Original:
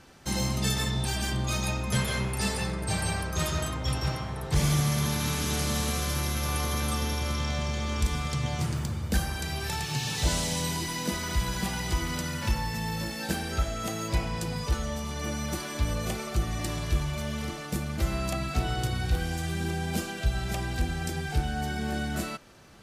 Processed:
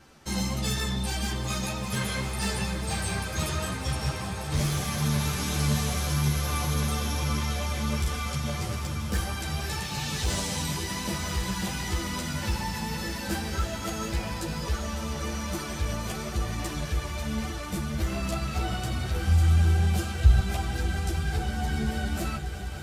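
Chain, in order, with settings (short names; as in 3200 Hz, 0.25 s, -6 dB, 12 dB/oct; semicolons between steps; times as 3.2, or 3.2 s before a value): vibrato 4.2 Hz 17 cents; overloaded stage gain 21 dB; 19.27–20.4 resonant low shelf 150 Hz +11 dB, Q 1.5; swelling echo 0.198 s, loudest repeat 5, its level -15 dB; ensemble effect; gain +2 dB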